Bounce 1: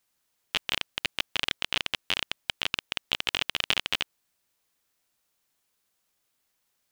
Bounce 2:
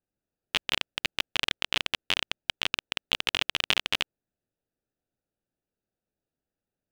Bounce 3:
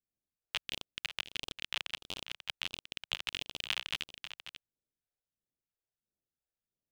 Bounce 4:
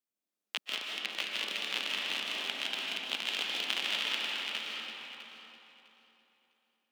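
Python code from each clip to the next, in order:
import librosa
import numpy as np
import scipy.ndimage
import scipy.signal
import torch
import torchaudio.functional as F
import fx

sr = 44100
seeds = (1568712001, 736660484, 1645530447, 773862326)

y1 = fx.wiener(x, sr, points=41)
y1 = F.gain(torch.from_numpy(y1), 1.0).numpy()
y2 = fx.phaser_stages(y1, sr, stages=2, low_hz=190.0, high_hz=2000.0, hz=1.5, feedback_pct=0)
y2 = y2 + 10.0 ** (-11.5 / 20.0) * np.pad(y2, (int(539 * sr / 1000.0), 0))[:len(y2)]
y2 = F.gain(torch.from_numpy(y2), -8.5).numpy()
y3 = fx.reverse_delay_fb(y2, sr, ms=327, feedback_pct=45, wet_db=-3.0)
y3 = scipy.signal.sosfilt(scipy.signal.butter(6, 200.0, 'highpass', fs=sr, output='sos'), y3)
y3 = fx.rev_freeverb(y3, sr, rt60_s=3.2, hf_ratio=0.45, predelay_ms=110, drr_db=-3.0)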